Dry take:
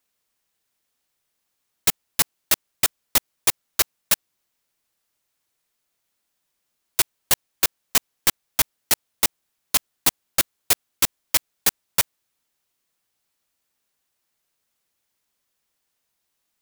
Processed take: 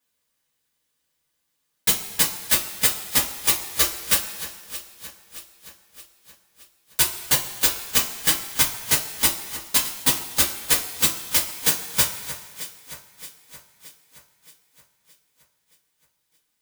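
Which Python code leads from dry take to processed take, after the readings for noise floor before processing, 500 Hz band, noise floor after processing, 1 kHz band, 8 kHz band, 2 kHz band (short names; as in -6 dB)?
-77 dBFS, +0.5 dB, -75 dBFS, 0.0 dB, +2.0 dB, +1.5 dB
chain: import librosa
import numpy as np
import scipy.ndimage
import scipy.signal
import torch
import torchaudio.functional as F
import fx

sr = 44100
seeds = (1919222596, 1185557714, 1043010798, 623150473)

y = fx.echo_alternate(x, sr, ms=311, hz=2100.0, feedback_pct=73, wet_db=-12.5)
y = fx.rev_double_slope(y, sr, seeds[0], early_s=0.2, late_s=1.7, knee_db=-18, drr_db=-5.0)
y = y * librosa.db_to_amplitude(-5.5)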